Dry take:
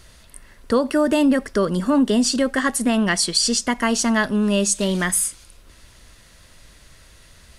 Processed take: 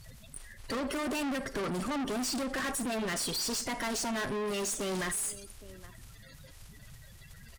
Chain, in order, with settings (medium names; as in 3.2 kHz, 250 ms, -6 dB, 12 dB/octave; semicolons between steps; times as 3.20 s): coarse spectral quantiser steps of 30 dB; comb 7.4 ms, depth 30%; in parallel at -0.5 dB: peak limiter -16 dBFS, peak gain reduction 8.5 dB; on the sum: echo from a far wall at 140 m, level -27 dB; Schroeder reverb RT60 0.46 s, combs from 28 ms, DRR 17.5 dB; valve stage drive 26 dB, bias 0.5; trim -5.5 dB